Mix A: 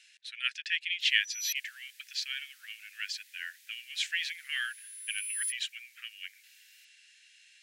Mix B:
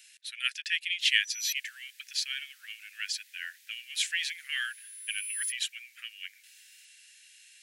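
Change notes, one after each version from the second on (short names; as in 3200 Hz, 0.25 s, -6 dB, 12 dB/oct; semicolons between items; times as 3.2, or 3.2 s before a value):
speech: remove air absorption 86 m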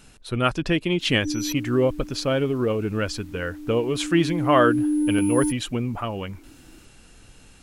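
master: remove steep high-pass 1700 Hz 72 dB/oct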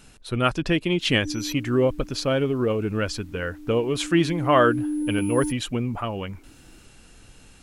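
background -4.5 dB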